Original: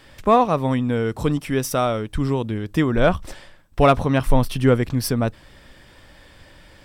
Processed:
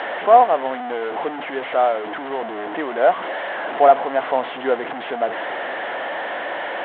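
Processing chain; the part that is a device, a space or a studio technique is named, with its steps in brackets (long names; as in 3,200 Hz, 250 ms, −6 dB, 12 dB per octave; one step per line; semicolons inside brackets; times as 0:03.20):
digital answering machine (band-pass filter 330–3,200 Hz; linear delta modulator 16 kbit/s, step −20.5 dBFS; loudspeaker in its box 410–3,800 Hz, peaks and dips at 710 Hz +9 dB, 1,200 Hz −4 dB, 2,500 Hz −10 dB)
level +1 dB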